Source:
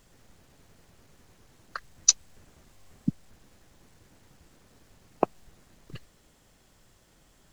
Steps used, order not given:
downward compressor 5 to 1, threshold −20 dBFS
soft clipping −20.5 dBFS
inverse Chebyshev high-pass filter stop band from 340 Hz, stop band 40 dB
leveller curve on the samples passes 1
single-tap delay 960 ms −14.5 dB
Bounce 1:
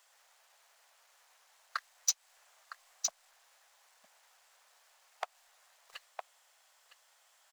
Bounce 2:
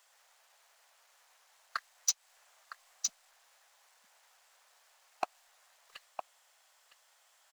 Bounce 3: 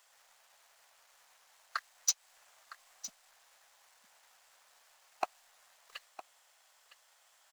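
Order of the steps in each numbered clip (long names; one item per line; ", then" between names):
leveller curve on the samples, then single-tap delay, then downward compressor, then soft clipping, then inverse Chebyshev high-pass filter
inverse Chebyshev high-pass filter, then leveller curve on the samples, then single-tap delay, then downward compressor, then soft clipping
inverse Chebyshev high-pass filter, then downward compressor, then soft clipping, then leveller curve on the samples, then single-tap delay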